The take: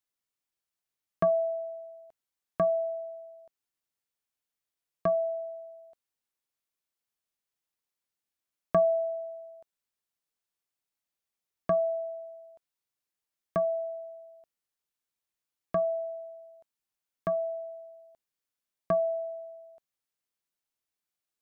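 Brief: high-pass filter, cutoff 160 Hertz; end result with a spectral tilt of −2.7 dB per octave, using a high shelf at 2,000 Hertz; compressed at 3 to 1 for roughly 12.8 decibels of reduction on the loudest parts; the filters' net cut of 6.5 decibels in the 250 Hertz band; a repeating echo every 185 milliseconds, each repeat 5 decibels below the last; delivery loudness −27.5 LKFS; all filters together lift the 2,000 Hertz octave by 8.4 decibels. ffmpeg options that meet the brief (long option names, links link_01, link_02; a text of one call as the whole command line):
ffmpeg -i in.wav -af "highpass=160,equalizer=frequency=250:width_type=o:gain=-8.5,highshelf=frequency=2000:gain=5,equalizer=frequency=2000:width_type=o:gain=8.5,acompressor=threshold=-38dB:ratio=3,aecho=1:1:185|370|555|740|925|1110|1295:0.562|0.315|0.176|0.0988|0.0553|0.031|0.0173,volume=10dB" out.wav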